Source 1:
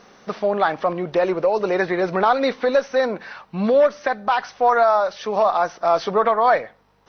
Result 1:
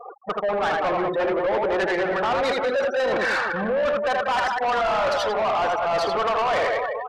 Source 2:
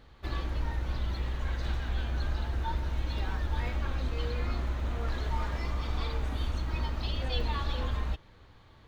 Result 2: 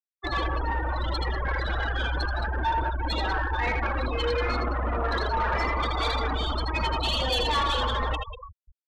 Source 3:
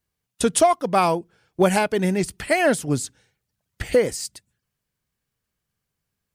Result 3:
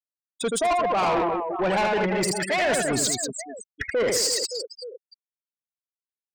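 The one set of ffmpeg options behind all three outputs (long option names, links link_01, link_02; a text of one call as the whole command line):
ffmpeg -i in.wav -filter_complex "[0:a]areverse,acompressor=threshold=-31dB:ratio=12,areverse,aecho=1:1:80|192|348.8|568.3|875.6:0.631|0.398|0.251|0.158|0.1,asplit=2[link_01][link_02];[link_02]highpass=frequency=720:poles=1,volume=15dB,asoftclip=type=tanh:threshold=-18dB[link_03];[link_01][link_03]amix=inputs=2:normalize=0,lowpass=frequency=5400:poles=1,volume=-6dB,aemphasis=mode=reproduction:type=50fm,acontrast=24,bass=frequency=250:gain=-3,treble=frequency=4000:gain=10,afftfilt=real='re*gte(hypot(re,im),0.0501)':imag='im*gte(hypot(re,im),0.0501)':win_size=1024:overlap=0.75,asoftclip=type=tanh:threshold=-24.5dB,volume=5.5dB" out.wav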